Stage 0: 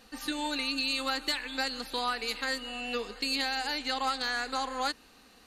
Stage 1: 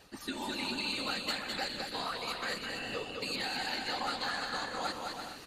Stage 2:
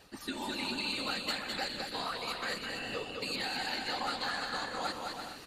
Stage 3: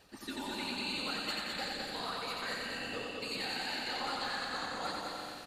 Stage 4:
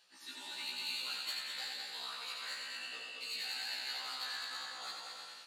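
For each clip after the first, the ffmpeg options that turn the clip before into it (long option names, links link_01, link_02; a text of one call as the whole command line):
ffmpeg -i in.wav -af "areverse,acompressor=mode=upward:threshold=-33dB:ratio=2.5,areverse,afftfilt=real='hypot(re,im)*cos(2*PI*random(0))':imag='hypot(re,im)*sin(2*PI*random(1))':win_size=512:overlap=0.75,aecho=1:1:210|336|411.6|457|484.2:0.631|0.398|0.251|0.158|0.1" out.wav
ffmpeg -i in.wav -af "bandreject=frequency=6400:width=23" out.wav
ffmpeg -i in.wav -af "aecho=1:1:89|178|267|356|445|534|623|712:0.708|0.396|0.222|0.124|0.0696|0.039|0.0218|0.0122,volume=-4dB" out.wav
ffmpeg -i in.wav -af "adynamicsmooth=sensitivity=4.5:basefreq=5100,aderivative,afftfilt=real='re*1.73*eq(mod(b,3),0)':imag='im*1.73*eq(mod(b,3),0)':win_size=2048:overlap=0.75,volume=9.5dB" out.wav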